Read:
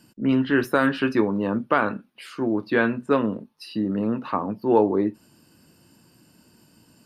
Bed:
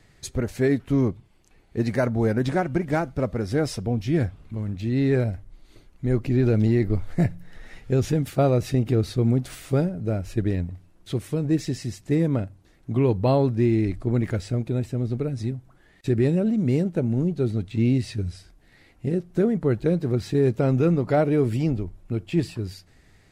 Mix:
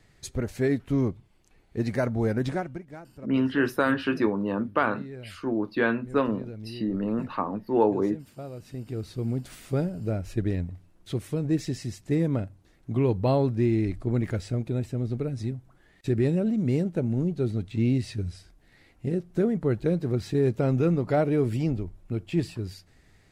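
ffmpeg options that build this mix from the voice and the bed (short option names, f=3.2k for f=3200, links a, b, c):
-filter_complex "[0:a]adelay=3050,volume=-3.5dB[a];[1:a]volume=13dB,afade=t=out:st=2.45:d=0.39:silence=0.158489,afade=t=in:st=8.6:d=1.47:silence=0.149624[b];[a][b]amix=inputs=2:normalize=0"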